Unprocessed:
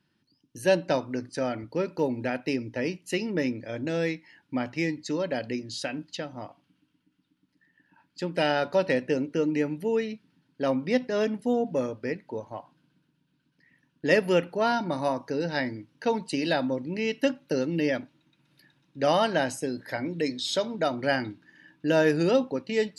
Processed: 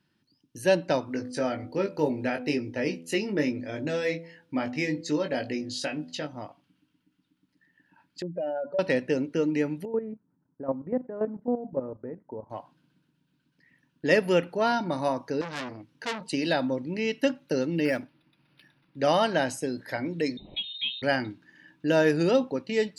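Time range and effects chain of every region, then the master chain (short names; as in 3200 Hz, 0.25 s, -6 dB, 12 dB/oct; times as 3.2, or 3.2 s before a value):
1.05–6.27 doubler 20 ms -5 dB + de-hum 83.29 Hz, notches 9
8.22–8.79 spectral contrast raised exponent 2.8 + LPF 10000 Hz + compressor 2:1, threshold -31 dBFS
9.85–12.5 LPF 1200 Hz 24 dB/oct + level quantiser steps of 12 dB
15.41–16.32 notch 590 Hz, Q 16 + core saturation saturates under 3500 Hz
17.85–18.99 Butterworth band-stop 3400 Hz, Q 4.7 + high shelf 3700 Hz +11.5 dB + decimation joined by straight lines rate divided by 6×
20.37–21.02 air absorption 330 m + fixed phaser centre 990 Hz, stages 4 + inverted band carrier 3900 Hz
whole clip: dry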